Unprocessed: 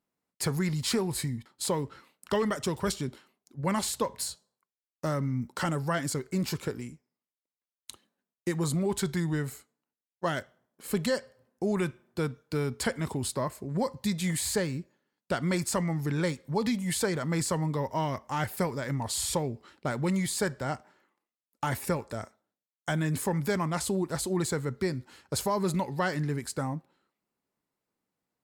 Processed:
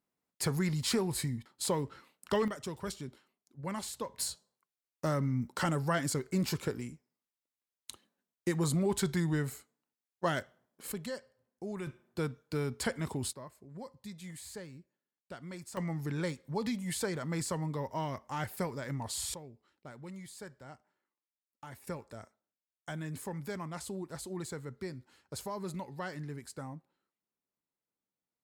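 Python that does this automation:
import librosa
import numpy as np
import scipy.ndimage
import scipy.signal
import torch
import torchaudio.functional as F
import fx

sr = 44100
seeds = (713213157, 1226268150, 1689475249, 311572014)

y = fx.gain(x, sr, db=fx.steps((0.0, -2.5), (2.48, -9.5), (4.18, -1.5), (10.92, -11.5), (11.87, -4.0), (13.33, -16.5), (15.77, -6.0), (19.34, -18.0), (21.87, -11.0)))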